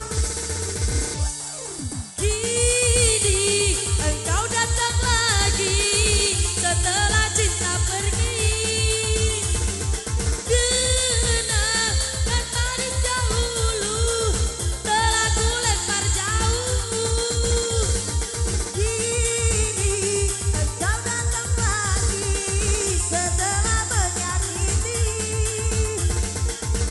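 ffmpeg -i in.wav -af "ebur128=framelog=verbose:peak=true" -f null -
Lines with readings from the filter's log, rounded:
Integrated loudness:
  I:         -21.0 LUFS
  Threshold: -31.0 LUFS
Loudness range:
  LRA:         3.0 LU
  Threshold: -40.8 LUFS
  LRA low:   -22.0 LUFS
  LRA high:  -19.0 LUFS
True peak:
  Peak:       -7.3 dBFS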